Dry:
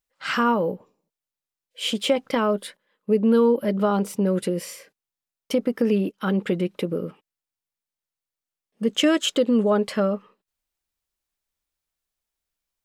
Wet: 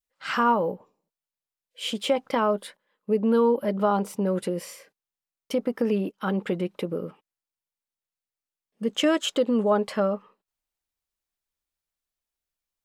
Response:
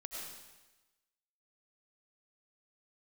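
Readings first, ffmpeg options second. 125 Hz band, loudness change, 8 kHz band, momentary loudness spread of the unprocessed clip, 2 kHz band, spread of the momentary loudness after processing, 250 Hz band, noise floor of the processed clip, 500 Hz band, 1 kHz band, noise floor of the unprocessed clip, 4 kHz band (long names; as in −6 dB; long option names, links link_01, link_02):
−4.0 dB, −2.5 dB, −4.5 dB, 11 LU, −3.0 dB, 12 LU, −4.0 dB, below −85 dBFS, −2.0 dB, +1.0 dB, below −85 dBFS, −4.0 dB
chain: -af "adynamicequalizer=threshold=0.0158:dfrequency=870:dqfactor=1.2:tfrequency=870:tqfactor=1.2:attack=5:release=100:ratio=0.375:range=3.5:mode=boostabove:tftype=bell,volume=-4.5dB"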